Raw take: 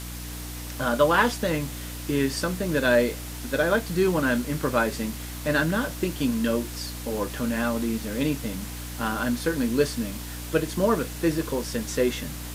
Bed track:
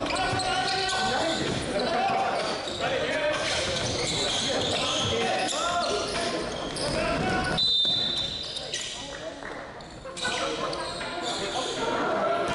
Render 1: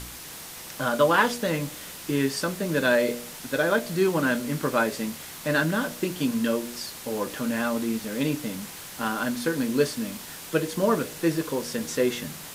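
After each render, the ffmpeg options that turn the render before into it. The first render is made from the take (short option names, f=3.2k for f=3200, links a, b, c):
-af "bandreject=f=60:t=h:w=4,bandreject=f=120:t=h:w=4,bandreject=f=180:t=h:w=4,bandreject=f=240:t=h:w=4,bandreject=f=300:t=h:w=4,bandreject=f=360:t=h:w=4,bandreject=f=420:t=h:w=4,bandreject=f=480:t=h:w=4,bandreject=f=540:t=h:w=4,bandreject=f=600:t=h:w=4,bandreject=f=660:t=h:w=4"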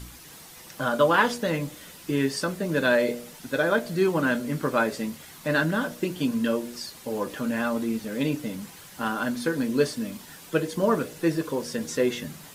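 -af "afftdn=nr=8:nf=-41"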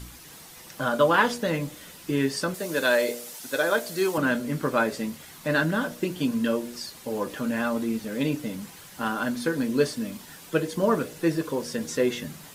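-filter_complex "[0:a]asettb=1/sr,asplit=3[a][b][c];[a]atrim=end=2.544[d];[b]atrim=start=2.54:end=4.18,asetpts=PTS-STARTPTS,afade=t=in:d=0.004:c=qsin,afade=t=out:st=1.636:d=0.004:c=qsin,bass=f=250:g=-12,treble=f=4k:g=8[e];[c]atrim=start=4.176[f];[d][e]acrossfade=d=0.004:c1=hsin:c2=qsin[g];[g][f]acrossfade=d=0.004:c1=qsin:c2=hsin"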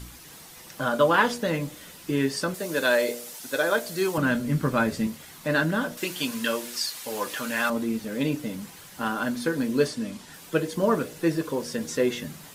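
-filter_complex "[0:a]asettb=1/sr,asplit=3[a][b][c];[a]atrim=end=3.694[d];[b]atrim=start=3.69:end=5.07,asetpts=PTS-STARTPTS,afade=t=in:d=0.004:c=qsin,afade=t=out:st=1.376:d=0.004:c=qsin,asubboost=boost=8.5:cutoff=210[e];[c]atrim=start=5.066[f];[d][e]acrossfade=d=0.004:c1=hsin:c2=qsin[g];[g][f]acrossfade=d=0.004:c1=qsin:c2=hsin,asettb=1/sr,asplit=3[h][i][j];[h]atrim=end=5.974[k];[i]atrim=start=5.97:end=7.7,asetpts=PTS-STARTPTS,afade=t=in:d=0.004:c=qsin,afade=t=out:st=1.726:d=0.004:c=qsin,tiltshelf=f=680:g=-8.5[l];[j]atrim=start=7.696[m];[k][l]acrossfade=d=0.004:c1=hsin:c2=qsin[n];[n][m]acrossfade=d=0.004:c1=qsin:c2=hsin,asettb=1/sr,asplit=3[o][p][q];[o]atrim=end=9.884[r];[p]atrim=start=9.88:end=10.34,asetpts=PTS-STARTPTS,afade=t=in:d=0.004:c=qsin,afade=t=out:st=0.456:d=0.004:c=qsin,lowpass=9.8k[s];[q]atrim=start=10.336[t];[r][s]acrossfade=d=0.004:c1=hsin:c2=qsin[u];[u][t]acrossfade=d=0.004:c1=qsin:c2=hsin"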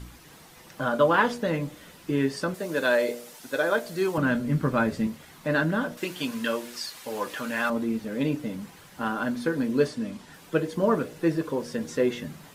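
-af "highshelf=f=3.5k:g=-9"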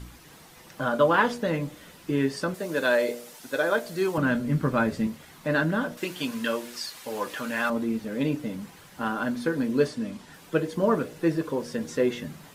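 -af anull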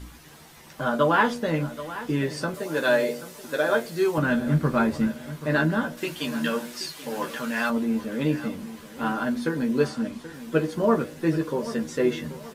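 -filter_complex "[0:a]asplit=2[a][b];[b]adelay=13,volume=-5dB[c];[a][c]amix=inputs=2:normalize=0,aecho=1:1:781|1562|2343|3124:0.188|0.0716|0.0272|0.0103"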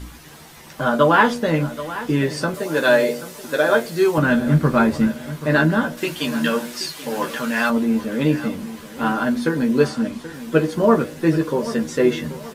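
-af "volume=6dB"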